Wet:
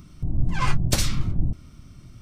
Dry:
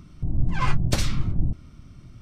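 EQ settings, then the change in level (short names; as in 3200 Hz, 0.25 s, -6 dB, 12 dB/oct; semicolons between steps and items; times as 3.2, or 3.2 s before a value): high shelf 5700 Hz +10 dB; 0.0 dB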